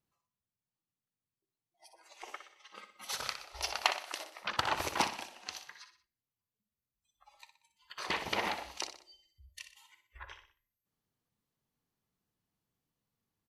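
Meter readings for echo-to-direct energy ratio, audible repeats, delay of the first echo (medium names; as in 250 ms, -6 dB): -9.0 dB, 3, 61 ms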